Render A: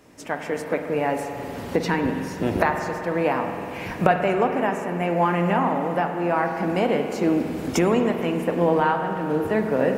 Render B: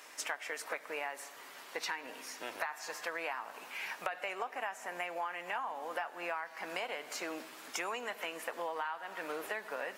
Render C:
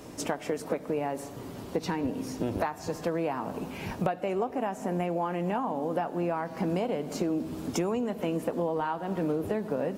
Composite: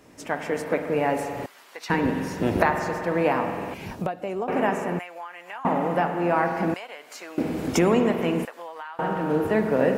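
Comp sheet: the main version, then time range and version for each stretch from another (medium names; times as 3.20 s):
A
1.46–1.90 s: from B
3.74–4.48 s: from C
4.99–5.65 s: from B
6.74–7.38 s: from B
8.45–8.99 s: from B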